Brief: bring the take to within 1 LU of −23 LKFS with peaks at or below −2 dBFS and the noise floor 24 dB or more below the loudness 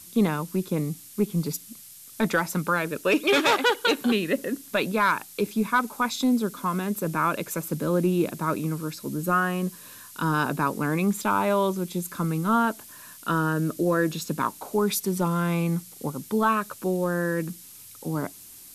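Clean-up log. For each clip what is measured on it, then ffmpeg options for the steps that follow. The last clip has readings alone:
background noise floor −46 dBFS; target noise floor −50 dBFS; integrated loudness −25.5 LKFS; sample peak −11.5 dBFS; target loudness −23.0 LKFS
→ -af "afftdn=noise_reduction=6:noise_floor=-46"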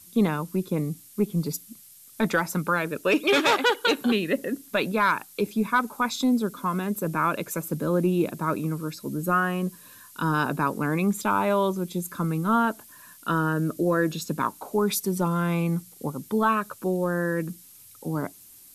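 background noise floor −50 dBFS; integrated loudness −25.5 LKFS; sample peak −11.5 dBFS; target loudness −23.0 LKFS
→ -af "volume=2.5dB"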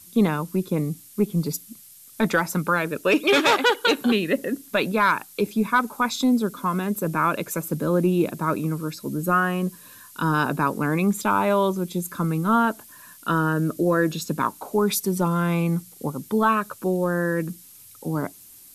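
integrated loudness −23.0 LKFS; sample peak −9.0 dBFS; background noise floor −48 dBFS

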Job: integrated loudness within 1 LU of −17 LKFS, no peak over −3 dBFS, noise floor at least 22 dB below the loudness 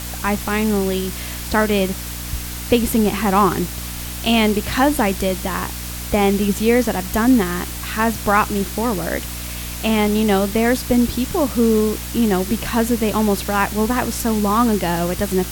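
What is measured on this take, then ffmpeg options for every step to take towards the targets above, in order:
mains hum 60 Hz; hum harmonics up to 300 Hz; level of the hum −29 dBFS; background noise floor −29 dBFS; target noise floor −41 dBFS; integrated loudness −19.0 LKFS; sample peak −2.0 dBFS; target loudness −17.0 LKFS
→ -af "bandreject=frequency=60:width_type=h:width=6,bandreject=frequency=120:width_type=h:width=6,bandreject=frequency=180:width_type=h:width=6,bandreject=frequency=240:width_type=h:width=6,bandreject=frequency=300:width_type=h:width=6"
-af "afftdn=noise_reduction=12:noise_floor=-29"
-af "volume=2dB,alimiter=limit=-3dB:level=0:latency=1"

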